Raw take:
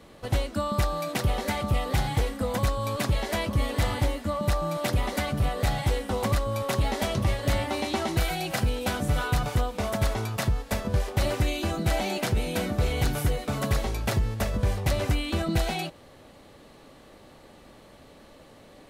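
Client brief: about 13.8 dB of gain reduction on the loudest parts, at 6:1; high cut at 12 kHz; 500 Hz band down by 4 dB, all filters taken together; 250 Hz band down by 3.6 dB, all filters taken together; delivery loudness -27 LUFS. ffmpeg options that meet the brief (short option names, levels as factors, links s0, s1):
-af "lowpass=12000,equalizer=f=250:t=o:g=-4,equalizer=f=500:t=o:g=-4,acompressor=threshold=0.0158:ratio=6,volume=4.47"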